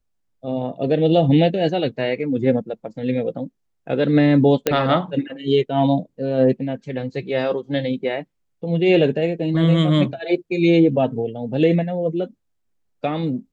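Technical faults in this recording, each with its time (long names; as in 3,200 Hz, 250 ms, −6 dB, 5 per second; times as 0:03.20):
0:04.67: click −3 dBFS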